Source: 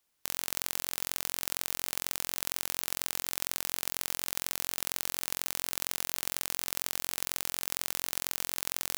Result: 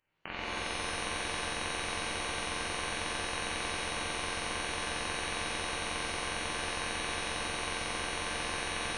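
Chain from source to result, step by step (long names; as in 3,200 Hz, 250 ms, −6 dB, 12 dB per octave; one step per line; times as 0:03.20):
voice inversion scrambler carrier 3,000 Hz
reverb with rising layers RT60 1.4 s, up +7 semitones, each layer −2 dB, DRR −4 dB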